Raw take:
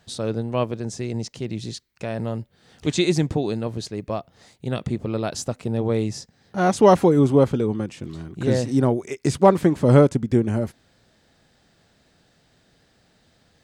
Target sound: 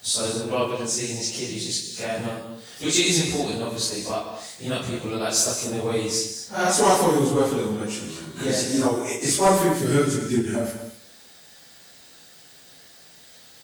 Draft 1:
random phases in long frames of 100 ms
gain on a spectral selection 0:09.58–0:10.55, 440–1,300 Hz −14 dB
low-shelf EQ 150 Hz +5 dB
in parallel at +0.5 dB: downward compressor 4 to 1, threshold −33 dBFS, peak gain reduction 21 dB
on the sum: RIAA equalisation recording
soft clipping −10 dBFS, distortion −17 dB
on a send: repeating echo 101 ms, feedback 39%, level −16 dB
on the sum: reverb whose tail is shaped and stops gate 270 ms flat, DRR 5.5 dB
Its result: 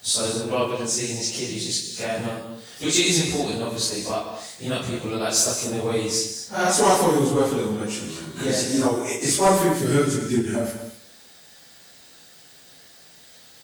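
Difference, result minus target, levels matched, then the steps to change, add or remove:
downward compressor: peak gain reduction −5 dB
change: downward compressor 4 to 1, threshold −39.5 dBFS, peak gain reduction 26 dB

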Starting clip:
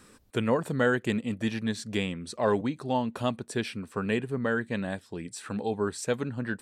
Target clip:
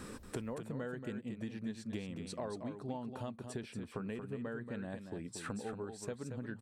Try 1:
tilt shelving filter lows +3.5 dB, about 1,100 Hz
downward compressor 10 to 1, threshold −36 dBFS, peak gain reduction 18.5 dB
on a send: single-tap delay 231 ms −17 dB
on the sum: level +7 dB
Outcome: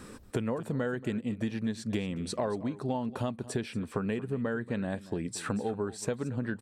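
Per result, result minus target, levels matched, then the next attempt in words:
downward compressor: peak gain reduction −10 dB; echo-to-direct −9.5 dB
tilt shelving filter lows +3.5 dB, about 1,100 Hz
downward compressor 10 to 1, threshold −47 dBFS, peak gain reduction 28.5 dB
on a send: single-tap delay 231 ms −17 dB
on the sum: level +7 dB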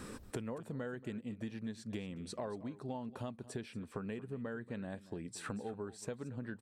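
echo-to-direct −9.5 dB
tilt shelving filter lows +3.5 dB, about 1,100 Hz
downward compressor 10 to 1, threshold −47 dBFS, peak gain reduction 28.5 dB
on a send: single-tap delay 231 ms −7.5 dB
on the sum: level +7 dB

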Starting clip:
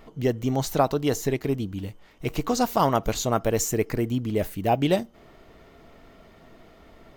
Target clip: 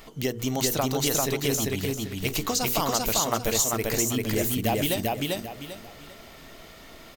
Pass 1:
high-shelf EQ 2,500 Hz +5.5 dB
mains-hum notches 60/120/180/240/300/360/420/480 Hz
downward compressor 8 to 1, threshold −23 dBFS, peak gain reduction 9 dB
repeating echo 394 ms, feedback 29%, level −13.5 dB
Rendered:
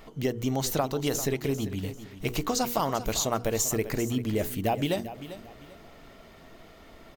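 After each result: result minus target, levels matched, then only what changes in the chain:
echo-to-direct −12 dB; 4,000 Hz band −3.0 dB
change: repeating echo 394 ms, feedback 29%, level −1.5 dB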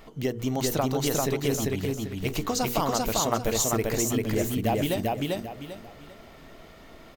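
4,000 Hz band −3.0 dB
change: high-shelf EQ 2,500 Hz +15.5 dB

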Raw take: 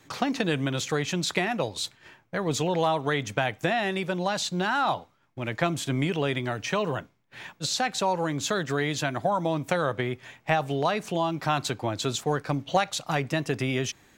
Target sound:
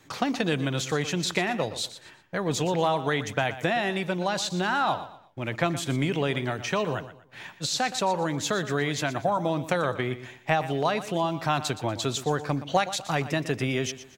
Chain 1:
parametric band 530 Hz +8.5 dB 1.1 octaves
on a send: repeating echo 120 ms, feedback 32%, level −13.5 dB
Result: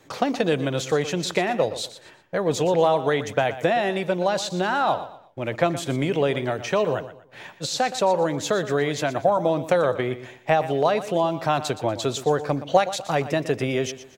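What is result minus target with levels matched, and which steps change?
500 Hz band +3.0 dB
remove: parametric band 530 Hz +8.5 dB 1.1 octaves

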